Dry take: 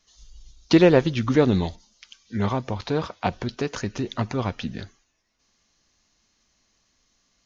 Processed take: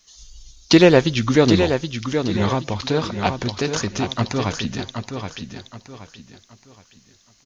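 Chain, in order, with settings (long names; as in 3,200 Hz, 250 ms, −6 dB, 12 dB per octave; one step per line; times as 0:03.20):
high-shelf EQ 3,200 Hz +10 dB
repeating echo 773 ms, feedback 32%, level −7 dB
level +3 dB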